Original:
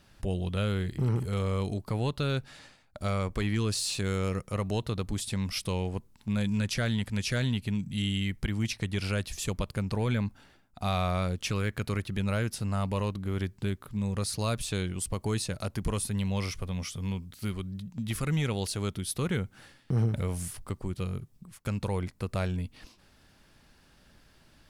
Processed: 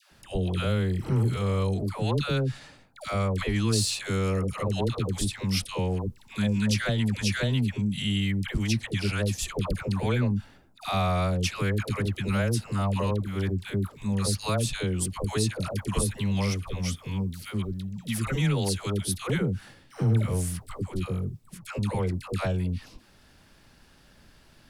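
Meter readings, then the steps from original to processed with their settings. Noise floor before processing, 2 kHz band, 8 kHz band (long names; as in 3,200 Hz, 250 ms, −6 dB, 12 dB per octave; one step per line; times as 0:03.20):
−61 dBFS, +3.5 dB, +3.5 dB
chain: all-pass dispersion lows, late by 118 ms, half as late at 700 Hz
level +3.5 dB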